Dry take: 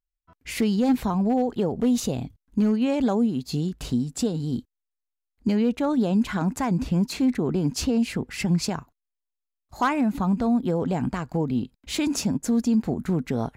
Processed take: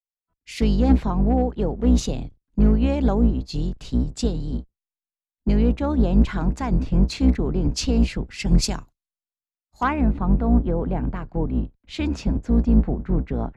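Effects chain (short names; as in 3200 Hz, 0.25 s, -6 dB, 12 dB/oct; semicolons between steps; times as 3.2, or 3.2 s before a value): octaver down 2 oct, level +3 dB; LPF 5800 Hz 12 dB/oct, from 8.47 s 10000 Hz, from 9.83 s 3000 Hz; three-band expander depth 70%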